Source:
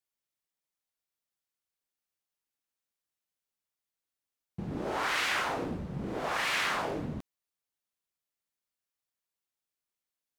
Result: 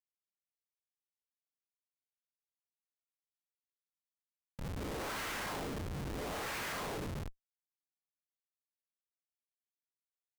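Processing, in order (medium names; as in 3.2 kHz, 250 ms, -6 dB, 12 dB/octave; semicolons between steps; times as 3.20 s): peak limiter -25.5 dBFS, peak gain reduction 7.5 dB; saturation -38.5 dBFS, distortion -9 dB; on a send: reverse echo 33 ms -8 dB; on the sum: gated-style reverb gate 100 ms rising, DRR -7 dB; Schmitt trigger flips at -34.5 dBFS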